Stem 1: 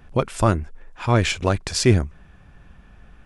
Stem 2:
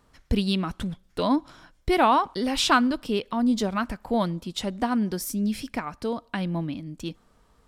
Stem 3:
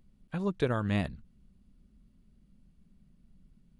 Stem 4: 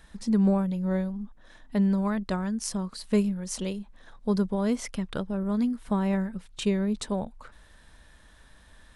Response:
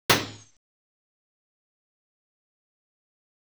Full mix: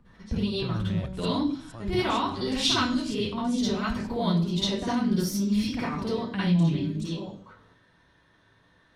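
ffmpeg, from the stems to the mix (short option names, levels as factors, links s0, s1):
-filter_complex "[0:a]adelay=850,volume=0.15,asplit=2[s0][s1];[s1]volume=0.668[s2];[1:a]dynaudnorm=f=140:g=13:m=3.35,volume=0.422,asplit=3[s3][s4][s5];[s4]volume=0.168[s6];[2:a]volume=1.19[s7];[3:a]volume=0.224,asplit=2[s8][s9];[s9]volume=0.2[s10];[s5]apad=whole_len=394874[s11];[s8][s11]sidechaingate=range=0.0224:threshold=0.00316:ratio=16:detection=peak[s12];[s3][s7]amix=inputs=2:normalize=0,bass=f=250:g=8,treble=f=4000:g=-13,alimiter=limit=0.168:level=0:latency=1,volume=1[s13];[4:a]atrim=start_sample=2205[s14];[s6][s10]amix=inputs=2:normalize=0[s15];[s15][s14]afir=irnorm=-1:irlink=0[s16];[s2]aecho=0:1:463|926|1389|1852|2315|2778|3241:1|0.49|0.24|0.118|0.0576|0.0282|0.0138[s17];[s0][s12][s13][s16][s17]amix=inputs=5:normalize=0,lowshelf=f=75:g=-8.5,acrossover=split=140|3000[s18][s19][s20];[s19]acompressor=threshold=0.01:ratio=2[s21];[s18][s21][s20]amix=inputs=3:normalize=0"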